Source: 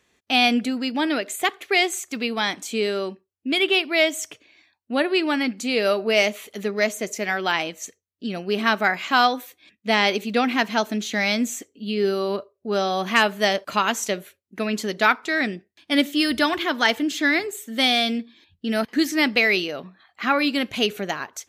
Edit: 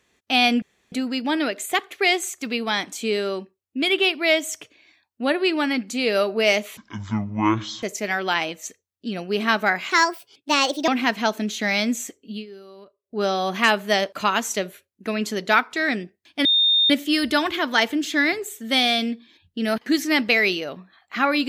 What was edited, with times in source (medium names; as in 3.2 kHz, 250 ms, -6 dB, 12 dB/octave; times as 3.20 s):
0.62 s: insert room tone 0.30 s
6.47–7.01 s: speed 51%
9.09–10.40 s: speed 135%
11.83–12.70 s: dip -20 dB, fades 0.15 s
15.97 s: add tone 3.65 kHz -14.5 dBFS 0.45 s